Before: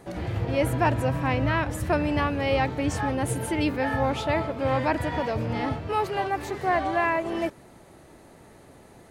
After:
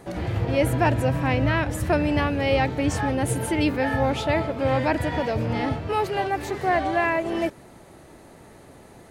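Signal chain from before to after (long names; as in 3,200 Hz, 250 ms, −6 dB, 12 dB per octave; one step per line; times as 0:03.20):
dynamic equaliser 1,100 Hz, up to −5 dB, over −38 dBFS, Q 2.4
level +3 dB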